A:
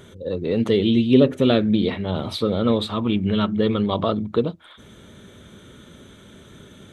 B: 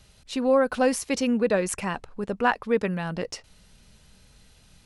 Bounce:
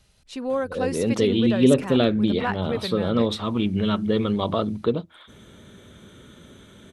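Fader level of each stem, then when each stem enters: -2.0, -5.0 dB; 0.50, 0.00 s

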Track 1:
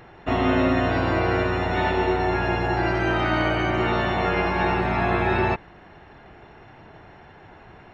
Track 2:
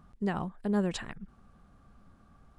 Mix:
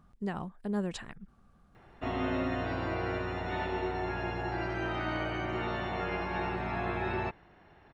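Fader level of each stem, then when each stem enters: -11.5, -4.0 dB; 1.75, 0.00 s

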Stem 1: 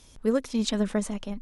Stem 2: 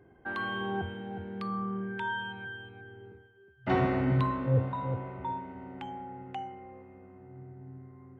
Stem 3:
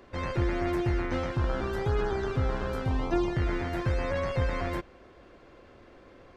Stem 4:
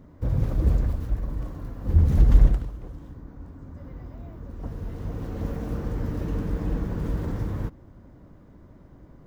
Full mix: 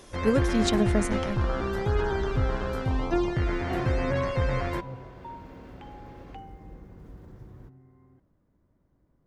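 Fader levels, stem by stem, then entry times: +1.0, -7.0, +1.5, -19.0 dB; 0.00, 0.00, 0.00, 0.00 s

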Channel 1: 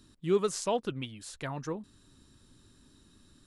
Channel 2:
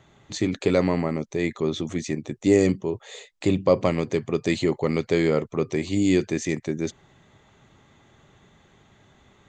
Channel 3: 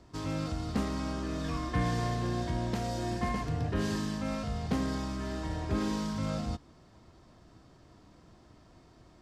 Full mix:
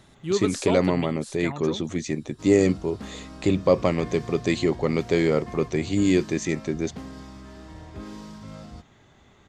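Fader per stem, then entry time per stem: +2.0, 0.0, -7.5 dB; 0.00, 0.00, 2.25 s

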